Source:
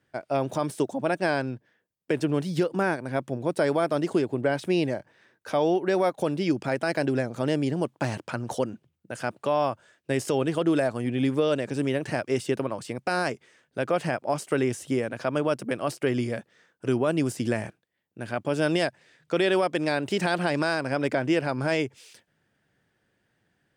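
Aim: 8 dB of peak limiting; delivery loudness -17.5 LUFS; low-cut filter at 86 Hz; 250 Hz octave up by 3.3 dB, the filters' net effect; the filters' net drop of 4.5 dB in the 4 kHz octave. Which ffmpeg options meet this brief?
-af "highpass=86,equalizer=f=250:t=o:g=4.5,equalizer=f=4000:t=o:g=-6.5,volume=4.22,alimiter=limit=0.473:level=0:latency=1"

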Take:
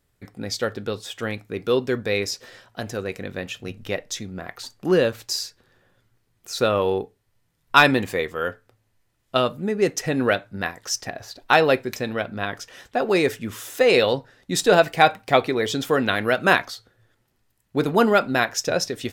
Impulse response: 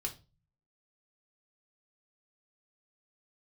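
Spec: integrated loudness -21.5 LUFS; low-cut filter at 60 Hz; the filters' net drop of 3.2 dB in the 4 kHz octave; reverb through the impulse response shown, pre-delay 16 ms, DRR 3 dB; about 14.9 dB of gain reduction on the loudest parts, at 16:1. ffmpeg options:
-filter_complex "[0:a]highpass=60,equalizer=f=4000:t=o:g=-4,acompressor=threshold=0.0562:ratio=16,asplit=2[s0][s1];[1:a]atrim=start_sample=2205,adelay=16[s2];[s1][s2]afir=irnorm=-1:irlink=0,volume=0.668[s3];[s0][s3]amix=inputs=2:normalize=0,volume=2.66"

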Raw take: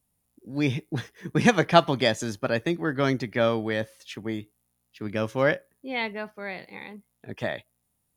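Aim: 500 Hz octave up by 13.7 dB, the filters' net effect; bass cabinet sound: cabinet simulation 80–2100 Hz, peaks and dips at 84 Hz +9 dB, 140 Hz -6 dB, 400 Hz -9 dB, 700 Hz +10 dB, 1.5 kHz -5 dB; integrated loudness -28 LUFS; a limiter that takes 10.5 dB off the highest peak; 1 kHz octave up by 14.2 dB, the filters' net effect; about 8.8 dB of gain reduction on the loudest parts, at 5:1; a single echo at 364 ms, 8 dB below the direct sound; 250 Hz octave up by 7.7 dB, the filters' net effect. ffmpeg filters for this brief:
-af "equalizer=f=250:t=o:g=8,equalizer=f=500:t=o:g=9,equalizer=f=1000:t=o:g=7.5,acompressor=threshold=0.224:ratio=5,alimiter=limit=0.251:level=0:latency=1,highpass=f=80:w=0.5412,highpass=f=80:w=1.3066,equalizer=f=84:t=q:w=4:g=9,equalizer=f=140:t=q:w=4:g=-6,equalizer=f=400:t=q:w=4:g=-9,equalizer=f=700:t=q:w=4:g=10,equalizer=f=1500:t=q:w=4:g=-5,lowpass=f=2100:w=0.5412,lowpass=f=2100:w=1.3066,aecho=1:1:364:0.398,volume=0.668"

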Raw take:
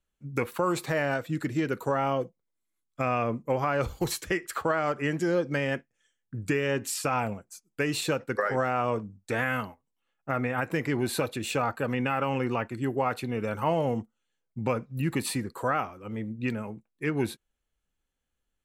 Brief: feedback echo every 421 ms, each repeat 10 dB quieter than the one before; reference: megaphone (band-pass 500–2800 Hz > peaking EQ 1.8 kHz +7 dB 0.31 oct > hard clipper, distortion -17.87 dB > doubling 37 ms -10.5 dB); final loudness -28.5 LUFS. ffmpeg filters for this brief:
-filter_complex "[0:a]highpass=500,lowpass=2800,equalizer=f=1800:t=o:w=0.31:g=7,aecho=1:1:421|842|1263|1684:0.316|0.101|0.0324|0.0104,asoftclip=type=hard:threshold=0.0841,asplit=2[s0][s1];[s1]adelay=37,volume=0.299[s2];[s0][s2]amix=inputs=2:normalize=0,volume=1.41"

